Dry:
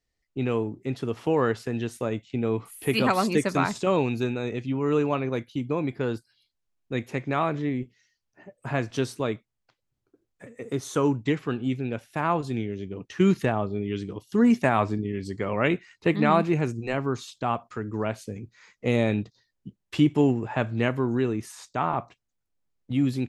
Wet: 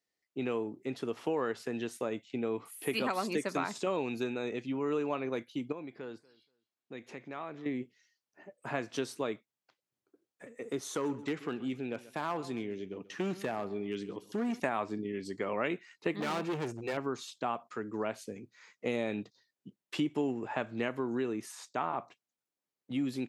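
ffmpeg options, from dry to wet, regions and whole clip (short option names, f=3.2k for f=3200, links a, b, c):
-filter_complex "[0:a]asettb=1/sr,asplit=3[a][b][c];[a]atrim=end=5.724[d];[b]atrim=start=5.72:end=7.66,asetpts=PTS-STARTPTS,afade=t=in:d=0.004:c=qsin,afade=t=out:st=1.936:d=0.004:c=qsin,lowpass=6.9k,acompressor=threshold=-42dB:ratio=2:attack=3.2:release=140:knee=1:detection=peak,aecho=1:1:238|476:0.0708|0.0142,atrim=end_sample=85554[e];[c]atrim=start=7.656[f];[d][e]acrossfade=d=0.004:c1=hsin:c2=qsin[g];[g][f]acrossfade=d=0.004:c1=qsin:c2=hsin,asettb=1/sr,asplit=3[h][i][j];[h]atrim=end=10.924[k];[i]atrim=start=10.92:end=14.6,asetpts=PTS-STARTPTS,afade=t=in:d=0.004:c=qsin,afade=t=out:st=3.676:d=0.004:c=qsin,acompressor=threshold=-26dB:ratio=1.5:attack=3.2:release=140:knee=1:detection=peak,volume=20.5dB,asoftclip=hard,volume=-20.5dB,aecho=1:1:133|266:0.126|0.0352,atrim=end_sample=162288[l];[j]atrim=start=14.596[m];[k][l]acrossfade=d=0.004:c1=hsin:c2=qsin[n];[n][m]acrossfade=d=0.004:c1=qsin:c2=hsin,asettb=1/sr,asplit=3[o][p][q];[o]atrim=end=16.204[r];[p]atrim=start=16.2:end=16.97,asetpts=PTS-STARTPTS,afade=t=in:d=0.004:c=qsin,afade=t=out:st=0.766:d=0.004:c=qsin,lowshelf=f=110:g=9,aecho=1:1:2.2:0.37,atrim=end_sample=33957,asoftclip=type=hard:threshold=-24.5dB[s];[q]atrim=start=16.966[t];[r][s]acrossfade=d=0.004:c1=hsin:c2=qsin[u];[u][t]acrossfade=d=0.004:c1=qsin:c2=hsin,highpass=240,acompressor=threshold=-26dB:ratio=3,volume=-3.5dB"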